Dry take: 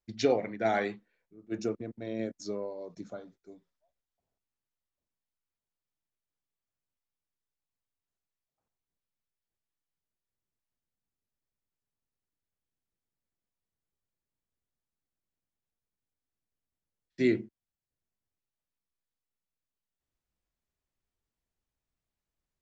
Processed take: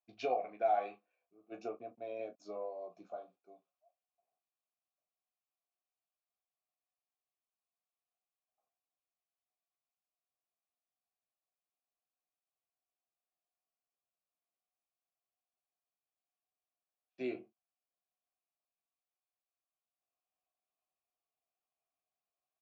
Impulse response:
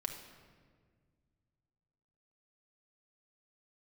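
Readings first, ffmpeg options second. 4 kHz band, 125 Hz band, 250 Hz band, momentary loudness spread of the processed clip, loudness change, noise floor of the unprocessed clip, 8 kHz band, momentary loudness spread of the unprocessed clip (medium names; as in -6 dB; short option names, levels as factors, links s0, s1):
-13.0 dB, -22.5 dB, -15.5 dB, 16 LU, -7.5 dB, under -85 dBFS, no reading, 17 LU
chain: -filter_complex "[0:a]asplit=3[s0][s1][s2];[s0]bandpass=f=730:t=q:w=8,volume=1[s3];[s1]bandpass=f=1090:t=q:w=8,volume=0.501[s4];[s2]bandpass=f=2440:t=q:w=8,volume=0.355[s5];[s3][s4][s5]amix=inputs=3:normalize=0,aecho=1:1:16|38:0.501|0.251,acompressor=threshold=0.00708:ratio=1.5,volume=2.11"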